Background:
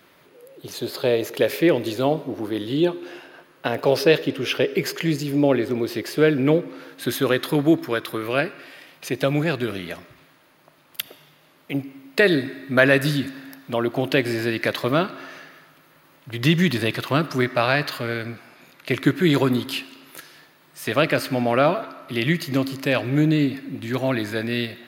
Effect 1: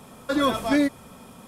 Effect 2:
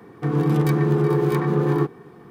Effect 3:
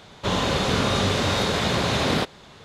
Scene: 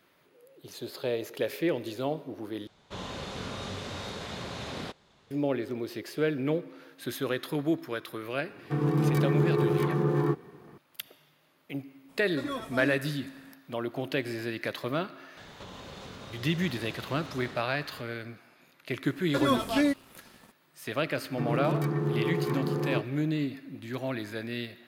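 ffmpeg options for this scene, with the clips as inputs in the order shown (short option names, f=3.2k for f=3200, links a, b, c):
-filter_complex "[3:a]asplit=2[a][b];[2:a]asplit=2[c][d];[1:a]asplit=2[e][f];[0:a]volume=-10.5dB[g];[b]acompressor=threshold=-34dB:ratio=12:attack=0.13:release=520:knee=1:detection=peak[h];[f]aeval=exprs='sgn(val(0))*max(abs(val(0))-0.00447,0)':c=same[i];[d]highpass=59[j];[g]asplit=2[k][l];[k]atrim=end=2.674[m];[a]atrim=end=2.64,asetpts=PTS-STARTPTS,volume=-15.5dB[n];[l]atrim=start=5.306[o];[c]atrim=end=2.3,asetpts=PTS-STARTPTS,volume=-6dB,afade=t=in:d=0.004:c=hsin,afade=t=out:st=2.296:d=0.004:c=hsin,adelay=8480[p];[e]atrim=end=1.47,asetpts=PTS-STARTPTS,volume=-13.5dB,afade=t=in:d=0.02,afade=t=out:st=1.45:d=0.02,adelay=12080[q];[h]atrim=end=2.64,asetpts=PTS-STARTPTS,volume=-3dB,afade=t=in:d=0.004:c=hsin,afade=t=out:st=2.636:d=0.004:c=hsin,adelay=15370[r];[i]atrim=end=1.47,asetpts=PTS-STARTPTS,volume=-4dB,afade=t=in:d=0.004:c=hsin,afade=t=out:st=1.466:d=0.004:c=hsin,adelay=19050[s];[j]atrim=end=2.3,asetpts=PTS-STARTPTS,volume=-9.5dB,afade=t=in:d=0.004:c=hsin,afade=t=out:st=2.296:d=0.004:c=hsin,adelay=21150[t];[m][n]acrossfade=d=0.004:c1=hsin:c2=hsin[u];[u][o]acrossfade=d=0.004:c1=hsin:c2=hsin[v];[v][p][q][r][s][t]amix=inputs=6:normalize=0"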